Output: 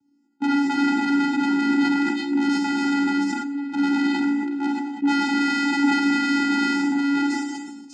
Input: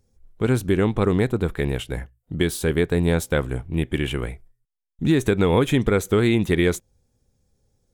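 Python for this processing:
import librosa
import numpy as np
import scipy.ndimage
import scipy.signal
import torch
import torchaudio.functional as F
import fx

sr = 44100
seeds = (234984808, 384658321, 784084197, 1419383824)

y = fx.reverse_delay(x, sr, ms=667, wet_db=-3.5)
y = fx.transient(y, sr, attack_db=-4, sustain_db=7, at=(1.57, 2.59))
y = fx.peak_eq(y, sr, hz=190.0, db=11.0, octaves=0.68, at=(5.35, 6.33))
y = (np.mod(10.0 ** (17.0 / 20.0) * y + 1.0, 2.0) - 1.0) / 10.0 ** (17.0 / 20.0)
y = fx.octave_resonator(y, sr, note='B', decay_s=0.26, at=(3.32, 3.72), fade=0.02)
y = fx.vocoder(y, sr, bands=8, carrier='square', carrier_hz=282.0)
y = 10.0 ** (-16.5 / 20.0) * np.tanh(y / 10.0 ** (-16.5 / 20.0))
y = fx.room_flutter(y, sr, wall_m=11.3, rt60_s=0.26)
y = fx.rev_schroeder(y, sr, rt60_s=0.58, comb_ms=31, drr_db=-0.5)
y = fx.sustainer(y, sr, db_per_s=35.0)
y = y * 10.0 ** (3.0 / 20.0)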